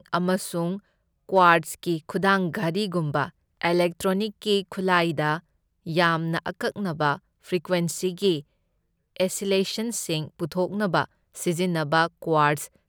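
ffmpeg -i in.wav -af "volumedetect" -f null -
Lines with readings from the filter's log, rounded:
mean_volume: -25.2 dB
max_volume: -3.6 dB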